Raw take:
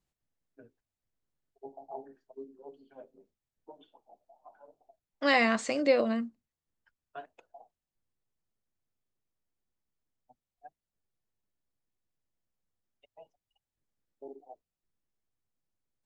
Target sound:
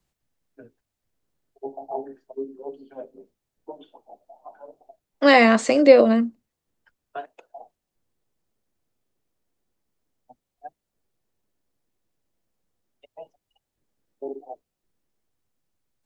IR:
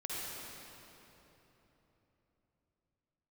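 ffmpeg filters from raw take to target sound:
-filter_complex "[0:a]asettb=1/sr,asplit=3[s0][s1][s2];[s0]atrim=end=7.174[s3];[s1]atrim=start=7.17:end=7.57,asetpts=PTS-STARTPTS,afade=t=in:d=0.004:c=qsin,afade=t=out:st=0.396:d=0.004:c=qsin,lowshelf=f=300:g=-10.5[s4];[s2]atrim=start=7.566[s5];[s3][s4]acrossfade=d=0.004:c1=hsin:c2=qsin[s6];[s6][s5]acrossfade=d=0.004:c1=qsin:c2=hsin,acrossover=split=220|710[s7][s8][s9];[s8]dynaudnorm=f=490:g=5:m=2[s10];[s7][s10][s9]amix=inputs=3:normalize=0,volume=2.51"

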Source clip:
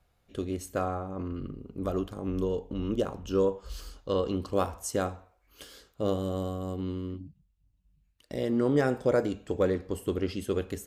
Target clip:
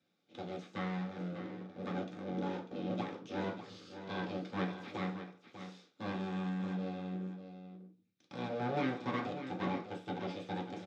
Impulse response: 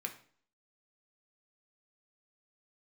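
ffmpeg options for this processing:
-filter_complex "[0:a]aeval=exprs='abs(val(0))':c=same,acrossover=split=3200[s0][s1];[s1]acompressor=threshold=0.00224:ratio=4:attack=1:release=60[s2];[s0][s2]amix=inputs=2:normalize=0,highpass=f=130:w=0.5412,highpass=f=130:w=1.3066,equalizer=f=640:t=q:w=4:g=-7,equalizer=f=1000:t=q:w=4:g=-9,equalizer=f=1800:t=q:w=4:g=-7,equalizer=f=2900:t=q:w=4:g=-7,lowpass=f=6100:w=0.5412,lowpass=f=6100:w=1.3066,aecho=1:1:595:0.299[s3];[1:a]atrim=start_sample=2205,asetrate=66150,aresample=44100[s4];[s3][s4]afir=irnorm=-1:irlink=0,volume=1.68"

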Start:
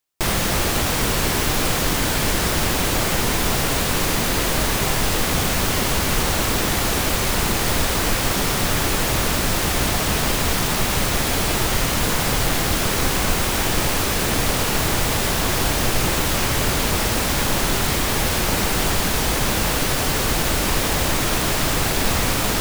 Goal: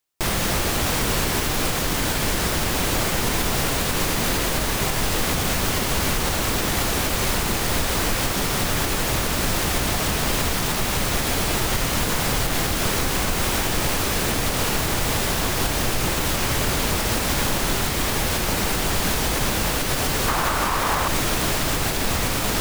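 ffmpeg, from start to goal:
-filter_complex "[0:a]asettb=1/sr,asplit=3[s0][s1][s2];[s0]atrim=end=20.284[s3];[s1]atrim=start=20.28:end=21.08,asetpts=PTS-STARTPTS,afade=t=in:d=0.004:c=qsin,afade=t=out:st=0.796:d=0.004:c=qsin,equalizer=f=1100:w=1.2:g=12.5[s4];[s2]atrim=start=21.076[s5];[s3][s4]acrossfade=d=0.004:c1=hsin:c2=qsin[s6];[s6][s5]acrossfade=d=0.004:c1=qsin:c2=hsin,alimiter=limit=0.266:level=0:latency=1:release=137"

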